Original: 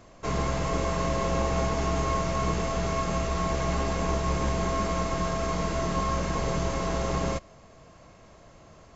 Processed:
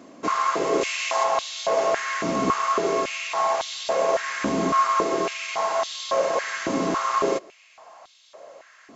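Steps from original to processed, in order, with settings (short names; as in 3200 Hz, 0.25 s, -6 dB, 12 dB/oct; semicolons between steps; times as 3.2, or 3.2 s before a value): 0.81–1.24 tilt +2 dB/oct; stepped high-pass 3.6 Hz 260–3600 Hz; gain +3 dB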